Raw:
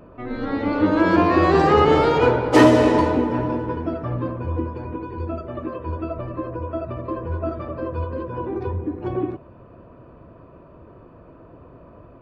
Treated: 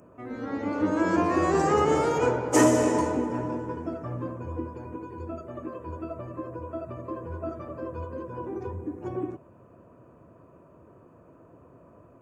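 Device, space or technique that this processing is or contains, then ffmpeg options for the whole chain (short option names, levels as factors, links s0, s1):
budget condenser microphone: -af "highpass=92,highshelf=f=5300:t=q:w=3:g=10,volume=0.447"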